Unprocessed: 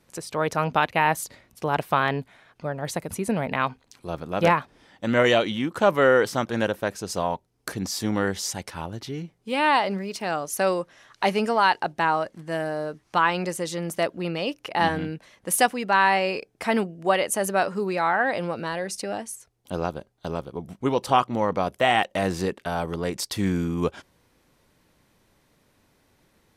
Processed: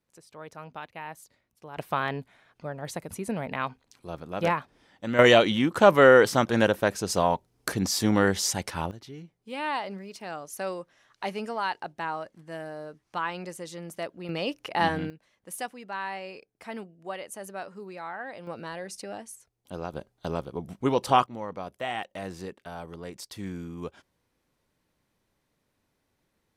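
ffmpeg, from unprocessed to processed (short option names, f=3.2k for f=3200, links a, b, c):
-af "asetnsamples=n=441:p=0,asendcmd='1.77 volume volume -6dB;5.19 volume volume 2.5dB;8.91 volume volume -10dB;14.29 volume volume -2.5dB;15.1 volume volume -15dB;18.47 volume volume -8dB;19.93 volume volume -1dB;21.26 volume volume -12dB',volume=-18.5dB"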